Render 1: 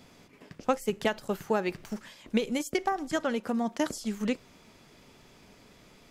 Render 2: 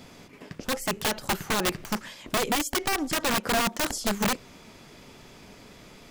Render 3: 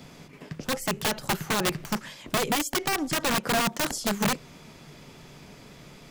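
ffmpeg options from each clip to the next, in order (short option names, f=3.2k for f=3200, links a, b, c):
-af "alimiter=limit=-21dB:level=0:latency=1:release=81,aeval=exprs='(mod(21.1*val(0)+1,2)-1)/21.1':c=same,volume=7dB"
-filter_complex "[0:a]equalizer=f=150:t=o:w=0.28:g=10,acrossover=split=110|7100[a][b][c];[a]alimiter=level_in=10.5dB:limit=-24dB:level=0:latency=1:release=401,volume=-10.5dB[d];[d][b][c]amix=inputs=3:normalize=0"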